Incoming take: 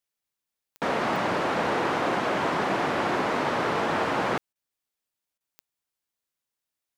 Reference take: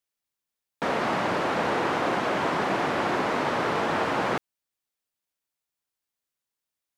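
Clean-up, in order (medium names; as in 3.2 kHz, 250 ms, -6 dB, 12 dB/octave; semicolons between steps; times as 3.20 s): clip repair -17 dBFS; de-click; interpolate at 4.53/5.38 s, 24 ms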